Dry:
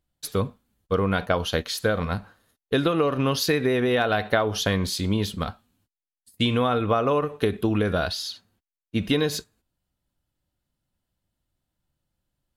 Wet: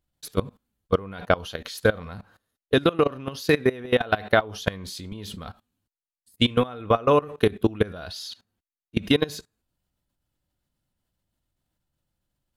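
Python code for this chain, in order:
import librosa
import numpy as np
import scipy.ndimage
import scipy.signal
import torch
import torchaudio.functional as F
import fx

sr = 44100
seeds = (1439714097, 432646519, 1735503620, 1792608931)

y = fx.level_steps(x, sr, step_db=21)
y = F.gain(torch.from_numpy(y), 5.0).numpy()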